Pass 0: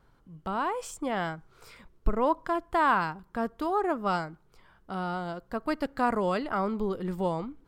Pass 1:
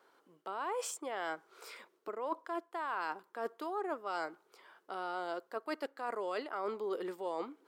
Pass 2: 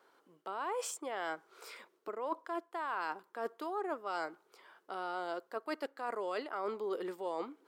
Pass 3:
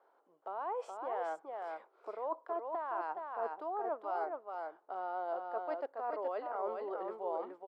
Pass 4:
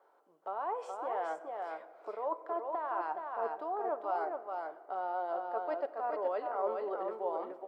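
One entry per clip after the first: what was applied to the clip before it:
Chebyshev high-pass 370 Hz, order 3; reverse; compressor 10:1, threshold -36 dBFS, peak gain reduction 16.5 dB; reverse; gain +2 dB
nothing audible
band-pass 700 Hz, Q 2.1; on a send: echo 0.421 s -4 dB; on the sum: gain +3.5 dB
reverb RT60 2.0 s, pre-delay 5 ms, DRR 8 dB; gain +2 dB

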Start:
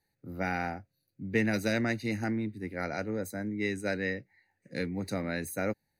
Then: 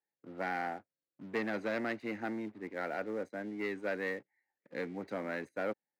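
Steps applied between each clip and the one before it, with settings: LPF 2000 Hz 12 dB/oct; sample leveller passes 2; HPF 330 Hz 12 dB/oct; gain -7.5 dB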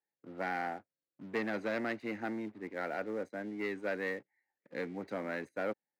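nothing audible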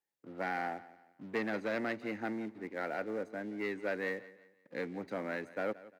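feedback echo 0.174 s, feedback 36%, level -18 dB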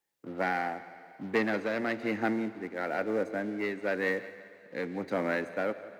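tremolo triangle 1 Hz, depth 50%; on a send at -14.5 dB: reverb RT60 3.1 s, pre-delay 52 ms; on the sum: gain +8.5 dB

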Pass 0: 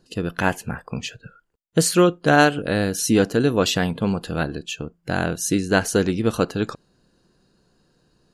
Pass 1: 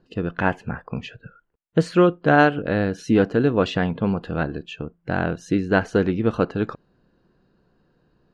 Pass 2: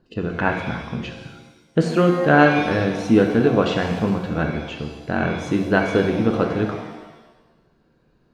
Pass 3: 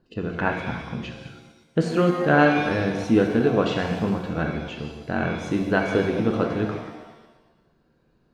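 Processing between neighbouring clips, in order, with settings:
LPF 2300 Hz 12 dB/oct
shimmer reverb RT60 1.1 s, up +7 st, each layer -8 dB, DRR 3.5 dB
reverse delay 0.117 s, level -11 dB; gain -3.5 dB

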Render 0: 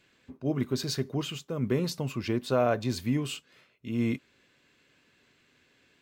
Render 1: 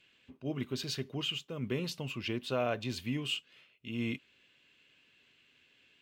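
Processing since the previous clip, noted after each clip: bell 2900 Hz +13 dB 0.74 oct; gain -7.5 dB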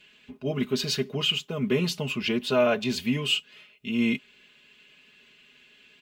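comb 4.8 ms, depth 80%; gain +7.5 dB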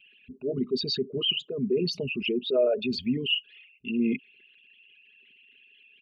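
formant sharpening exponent 3; gain -1 dB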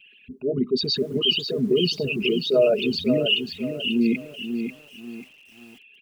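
lo-fi delay 0.54 s, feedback 35%, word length 9-bit, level -7 dB; gain +5 dB

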